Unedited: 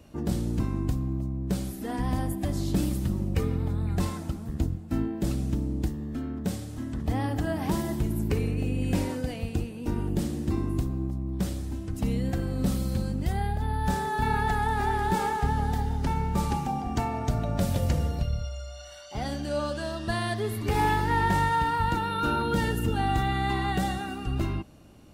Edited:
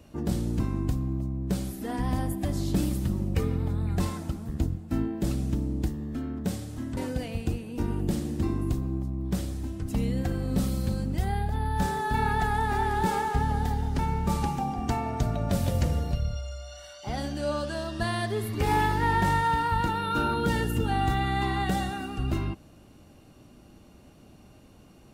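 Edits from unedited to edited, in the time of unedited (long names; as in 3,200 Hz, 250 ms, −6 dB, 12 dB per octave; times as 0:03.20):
0:06.97–0:09.05: remove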